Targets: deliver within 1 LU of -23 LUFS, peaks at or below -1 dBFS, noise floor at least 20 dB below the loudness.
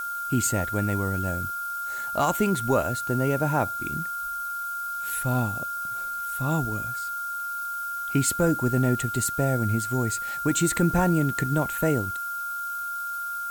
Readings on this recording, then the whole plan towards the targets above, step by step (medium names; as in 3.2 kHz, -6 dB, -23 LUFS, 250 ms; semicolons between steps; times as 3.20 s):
steady tone 1.4 kHz; tone level -29 dBFS; noise floor -32 dBFS; noise floor target -46 dBFS; loudness -26.0 LUFS; peak level -11.5 dBFS; loudness target -23.0 LUFS
-> band-stop 1.4 kHz, Q 30; noise reduction 14 dB, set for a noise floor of -32 dBFS; trim +3 dB